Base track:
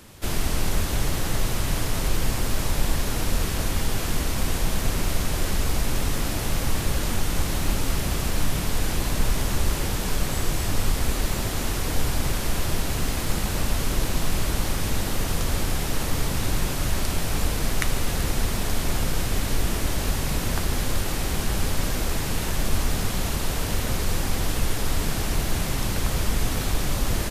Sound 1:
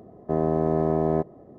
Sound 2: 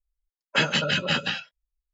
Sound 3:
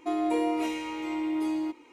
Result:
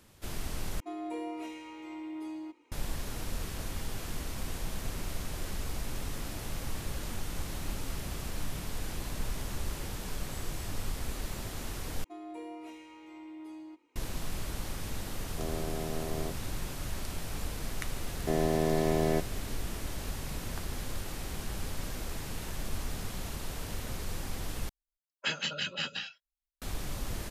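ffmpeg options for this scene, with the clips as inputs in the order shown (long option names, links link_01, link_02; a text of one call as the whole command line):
ffmpeg -i bed.wav -i cue0.wav -i cue1.wav -i cue2.wav -filter_complex "[3:a]asplit=2[link_01][link_02];[1:a]asplit=2[link_03][link_04];[0:a]volume=-12.5dB[link_05];[link_04]aexciter=amount=10.9:drive=7.3:freq=2000[link_06];[2:a]highshelf=frequency=2100:gain=10[link_07];[link_05]asplit=4[link_08][link_09][link_10][link_11];[link_08]atrim=end=0.804[link_12];[link_01]atrim=end=1.92,asetpts=PTS-STARTPTS,volume=-11dB[link_13];[link_09]atrim=start=2.716:end=12.044[link_14];[link_02]atrim=end=1.92,asetpts=PTS-STARTPTS,volume=-16.5dB[link_15];[link_10]atrim=start=13.956:end=24.694[link_16];[link_07]atrim=end=1.93,asetpts=PTS-STARTPTS,volume=-15.5dB[link_17];[link_11]atrim=start=26.616[link_18];[link_03]atrim=end=1.58,asetpts=PTS-STARTPTS,volume=-15dB,afade=type=in:duration=0.004:curve=hsin,afade=type=out:start_time=1.576:duration=0.004:curve=hsin,adelay=15090[link_19];[link_06]atrim=end=1.58,asetpts=PTS-STARTPTS,volume=-5.5dB,afade=type=in:duration=0.004:curve=hsin,afade=type=out:start_time=1.576:duration=0.004:curve=hsin,adelay=17980[link_20];[link_12][link_13]acrossfade=duration=0.004:curve1=hsin:curve2=hsin[link_21];[link_21][link_14]acrossfade=duration=0.004:curve1=hsin:curve2=hsin[link_22];[link_22][link_15]acrossfade=duration=0.004:curve1=hsin:curve2=hsin[link_23];[link_23][link_16]acrossfade=duration=0.004:curve1=hsin:curve2=hsin[link_24];[link_24][link_17]acrossfade=duration=0.004:curve1=hsin:curve2=hsin[link_25];[link_25][link_18]acrossfade=duration=0.004:curve1=hsin:curve2=hsin[link_26];[link_26][link_19][link_20]amix=inputs=3:normalize=0" out.wav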